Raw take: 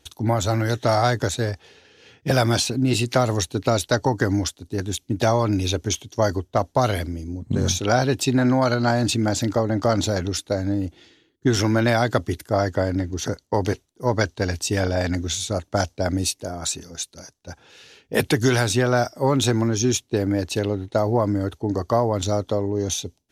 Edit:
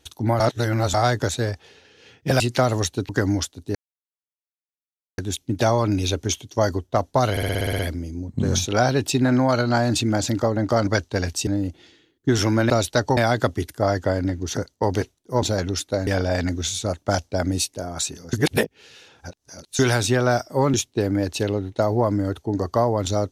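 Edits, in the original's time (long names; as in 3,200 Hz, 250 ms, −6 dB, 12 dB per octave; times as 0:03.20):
0:00.40–0:00.94: reverse
0:02.40–0:02.97: remove
0:03.66–0:04.13: move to 0:11.88
0:04.79: splice in silence 1.43 s
0:06.92: stutter 0.06 s, 9 plays
0:10.00–0:10.65: swap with 0:14.13–0:14.73
0:16.99–0:18.45: reverse
0:19.40–0:19.90: remove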